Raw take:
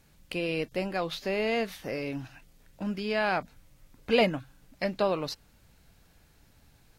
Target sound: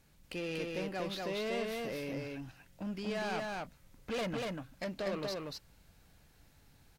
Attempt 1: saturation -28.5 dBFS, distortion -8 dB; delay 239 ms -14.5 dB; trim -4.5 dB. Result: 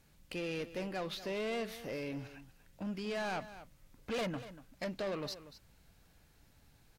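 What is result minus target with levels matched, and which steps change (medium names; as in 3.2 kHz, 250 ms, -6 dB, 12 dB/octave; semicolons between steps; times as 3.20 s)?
echo-to-direct -12 dB
change: delay 239 ms -2.5 dB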